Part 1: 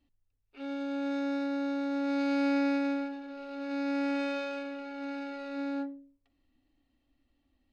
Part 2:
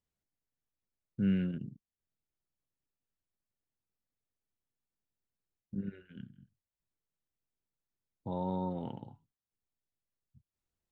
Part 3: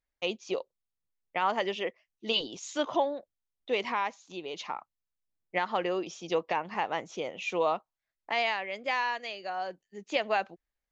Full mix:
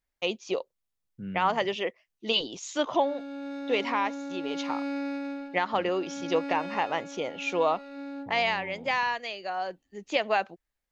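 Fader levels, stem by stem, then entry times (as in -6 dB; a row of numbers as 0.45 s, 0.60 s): -4.5 dB, -8.5 dB, +2.5 dB; 2.40 s, 0.00 s, 0.00 s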